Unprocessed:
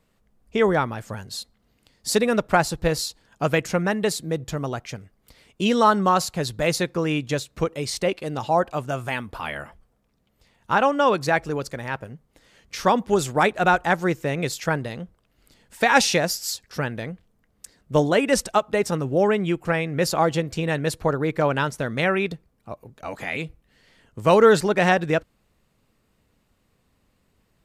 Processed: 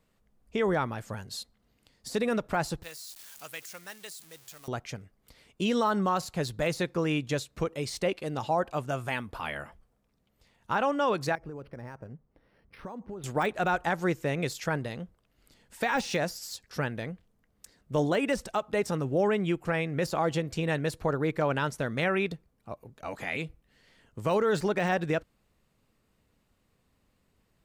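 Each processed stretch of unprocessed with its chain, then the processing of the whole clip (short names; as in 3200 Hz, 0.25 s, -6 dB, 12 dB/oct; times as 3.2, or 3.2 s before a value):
2.83–4.68 zero-crossing step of -31.5 dBFS + pre-emphasis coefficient 0.97
11.35–13.24 compressor 10:1, threshold -30 dBFS + tape spacing loss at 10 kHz 34 dB + decimation joined by straight lines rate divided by 6×
whole clip: de-esser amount 60%; limiter -13 dBFS; gain -4.5 dB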